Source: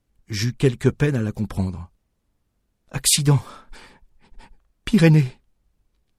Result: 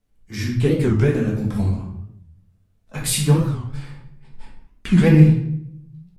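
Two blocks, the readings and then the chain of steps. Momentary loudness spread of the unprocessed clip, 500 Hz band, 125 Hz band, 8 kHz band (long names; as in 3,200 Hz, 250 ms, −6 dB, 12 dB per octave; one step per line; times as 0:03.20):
15 LU, +1.5 dB, +3.5 dB, −4.5 dB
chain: dynamic equaliser 5,300 Hz, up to −6 dB, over −37 dBFS, Q 0.74
rectangular room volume 160 cubic metres, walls mixed, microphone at 1.5 metres
wow of a warped record 45 rpm, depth 250 cents
level −5 dB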